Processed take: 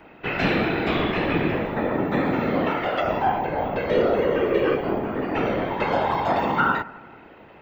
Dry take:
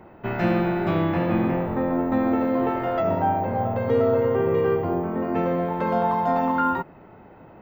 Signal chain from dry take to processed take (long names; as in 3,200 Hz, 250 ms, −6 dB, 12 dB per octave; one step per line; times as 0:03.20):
meter weighting curve D
random phases in short frames
bucket-brigade delay 88 ms, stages 1,024, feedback 69%, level −20 dB